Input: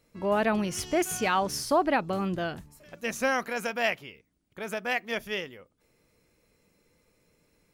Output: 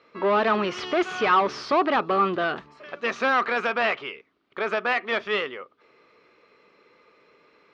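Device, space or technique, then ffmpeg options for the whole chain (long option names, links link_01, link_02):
overdrive pedal into a guitar cabinet: -filter_complex "[0:a]asplit=2[link_01][link_02];[link_02]highpass=frequency=720:poles=1,volume=21dB,asoftclip=type=tanh:threshold=-14.5dB[link_03];[link_01][link_03]amix=inputs=2:normalize=0,lowpass=frequency=5100:poles=1,volume=-6dB,highpass=81,equalizer=frequency=97:width_type=q:width=4:gain=-9,equalizer=frequency=170:width_type=q:width=4:gain=-5,equalizer=frequency=400:width_type=q:width=4:gain=7,equalizer=frequency=1200:width_type=q:width=4:gain=10,lowpass=frequency=4100:width=0.5412,lowpass=frequency=4100:width=1.3066,volume=-2.5dB"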